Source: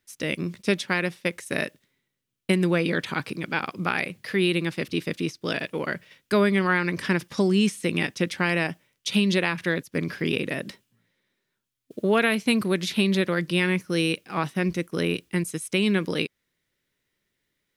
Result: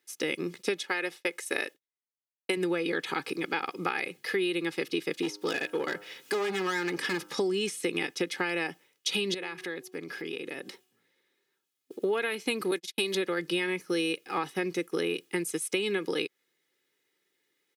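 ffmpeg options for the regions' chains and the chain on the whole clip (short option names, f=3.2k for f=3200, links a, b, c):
-filter_complex "[0:a]asettb=1/sr,asplit=3[a][b][c];[a]atrim=end=0.834[d];[b]atrim=start=0.83:end=2.57,asetpts=PTS-STARTPTS,afade=t=in:d=0.004:c=qsin,afade=t=out:st=1.736:d=0.004:c=qsin,agate=range=-33dB:threshold=-47dB:ratio=3:release=100:detection=peak,equalizer=f=120:w=0.75:g=-12[e];[c]atrim=start=2.566[f];[d][e]acrossfade=d=0.004:c1=hsin:c2=qsin[g];[g][f]acrossfade=d=0.004:c1=qsin:c2=hsin,asettb=1/sr,asplit=3[h][i][j];[h]atrim=end=5.224[k];[i]atrim=start=5.22:end=7.38,asetpts=PTS-STARTPTS,afade=t=in:d=0.004:c=qsin,afade=t=out:st=2.156:d=0.004:c=qsin,acompressor=mode=upward:threshold=-34dB:ratio=2.5:attack=3.2:release=140:knee=2.83:detection=peak,asoftclip=type=hard:threshold=-23dB,bandreject=f=102.3:t=h:w=4,bandreject=f=204.6:t=h:w=4,bandreject=f=306.9:t=h:w=4,bandreject=f=409.2:t=h:w=4,bandreject=f=511.5:t=h:w=4,bandreject=f=613.8:t=h:w=4,bandreject=f=716.1:t=h:w=4,bandreject=f=818.4:t=h:w=4,bandreject=f=920.7:t=h:w=4,bandreject=f=1.023k:t=h:w=4,bandreject=f=1.1253k:t=h:w=4,bandreject=f=1.2276k:t=h:w=4,bandreject=f=1.3299k:t=h:w=4,bandreject=f=1.4322k:t=h:w=4,bandreject=f=1.5345k:t=h:w=4,bandreject=f=1.6368k:t=h:w=4[l];[j]atrim=start=7.376[m];[k][l]acrossfade=d=0.004:c1=hsin:c2=qsin[n];[n][m]acrossfade=d=0.004:c1=qsin:c2=hsin,asettb=1/sr,asplit=3[o][p][q];[o]atrim=end=9.344[r];[p]atrim=start=9.34:end=12.02,asetpts=PTS-STARTPTS,afade=t=in:d=0.004:c=qsin,afade=t=out:st=2.676:d=0.004:c=qsin,bandreject=f=370.3:t=h:w=4,bandreject=f=740.6:t=h:w=4,bandreject=f=1.1109k:t=h:w=4,acompressor=threshold=-37dB:ratio=3:attack=3.2:release=140:knee=1:detection=peak[s];[q]atrim=start=12.016[t];[r][s]acrossfade=d=0.004:c1=hsin:c2=qsin[u];[u][t]acrossfade=d=0.004:c1=qsin:c2=hsin,asettb=1/sr,asplit=3[v][w][x];[v]atrim=end=12.714[y];[w]atrim=start=12.71:end=13.15,asetpts=PTS-STARTPTS,afade=t=in:d=0.004:c=qsin,afade=t=out:st=0.436:d=0.004:c=qsin,agate=range=-51dB:threshold=-27dB:ratio=16:release=100:detection=peak,bass=f=250:g=-6,treble=f=4k:g=8[z];[x]atrim=start=13.146[aa];[y][z]acrossfade=d=0.004:c1=hsin:c2=qsin[ab];[ab][aa]acrossfade=d=0.004:c1=qsin:c2=hsin,highpass=f=190:w=0.5412,highpass=f=190:w=1.3066,aecho=1:1:2.4:0.65,acompressor=threshold=-26dB:ratio=6"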